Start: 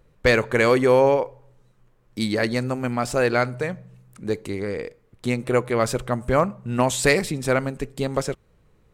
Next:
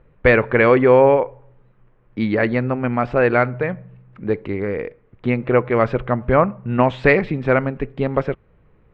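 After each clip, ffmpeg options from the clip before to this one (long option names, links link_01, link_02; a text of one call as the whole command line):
ffmpeg -i in.wav -af "lowpass=frequency=2600:width=0.5412,lowpass=frequency=2600:width=1.3066,volume=4.5dB" out.wav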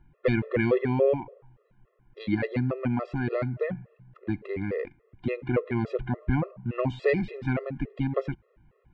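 ffmpeg -i in.wav -filter_complex "[0:a]acrossover=split=500|3000[link_01][link_02][link_03];[link_02]acompressor=threshold=-28dB:ratio=6[link_04];[link_01][link_04][link_03]amix=inputs=3:normalize=0,afftfilt=real='re*gt(sin(2*PI*3.5*pts/sr)*(1-2*mod(floor(b*sr/1024/350),2)),0)':imag='im*gt(sin(2*PI*3.5*pts/sr)*(1-2*mod(floor(b*sr/1024/350),2)),0)':win_size=1024:overlap=0.75,volume=-3.5dB" out.wav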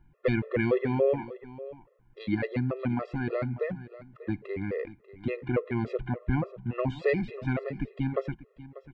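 ffmpeg -i in.wav -af "aecho=1:1:591:0.15,volume=-2dB" out.wav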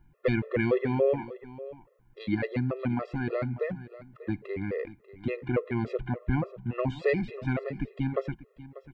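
ffmpeg -i in.wav -af "crystalizer=i=0.5:c=0" out.wav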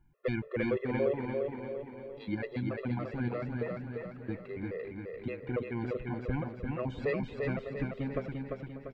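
ffmpeg -i in.wav -af "aecho=1:1:345|690|1035|1380|1725|2070|2415:0.668|0.334|0.167|0.0835|0.0418|0.0209|0.0104,volume=-6.5dB" out.wav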